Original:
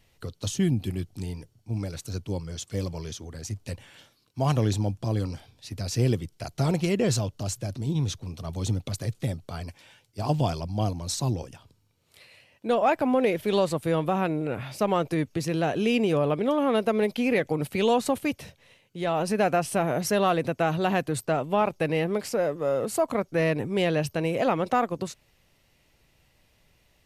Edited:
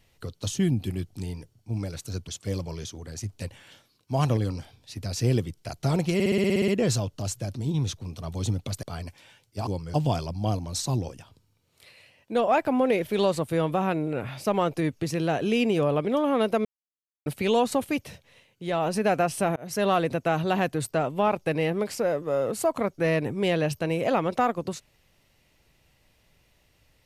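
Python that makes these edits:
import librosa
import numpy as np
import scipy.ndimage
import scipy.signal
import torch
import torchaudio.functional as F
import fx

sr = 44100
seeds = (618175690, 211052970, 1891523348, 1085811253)

y = fx.edit(x, sr, fx.move(start_s=2.28, length_s=0.27, to_s=10.28),
    fx.cut(start_s=4.64, length_s=0.48),
    fx.stutter(start_s=6.89, slice_s=0.06, count=10),
    fx.cut(start_s=9.04, length_s=0.4),
    fx.silence(start_s=16.99, length_s=0.61),
    fx.fade_in_span(start_s=19.9, length_s=0.3), tone=tone)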